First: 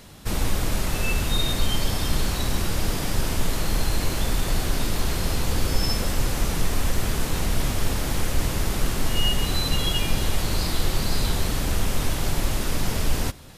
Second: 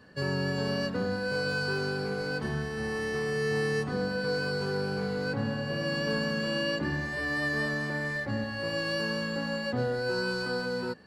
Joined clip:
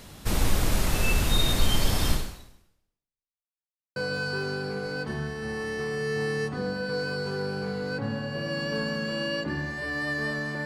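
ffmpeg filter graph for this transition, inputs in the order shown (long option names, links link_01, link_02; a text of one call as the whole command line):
ffmpeg -i cue0.wav -i cue1.wav -filter_complex "[0:a]apad=whole_dur=10.65,atrim=end=10.65,asplit=2[link_01][link_02];[link_01]atrim=end=3.45,asetpts=PTS-STARTPTS,afade=type=out:start_time=2.11:duration=1.34:curve=exp[link_03];[link_02]atrim=start=3.45:end=3.96,asetpts=PTS-STARTPTS,volume=0[link_04];[1:a]atrim=start=1.31:end=8,asetpts=PTS-STARTPTS,afade=type=in:duration=0.004:curve=hsin[link_05];[link_03][link_04][link_05]concat=n=3:v=0:a=1" out.wav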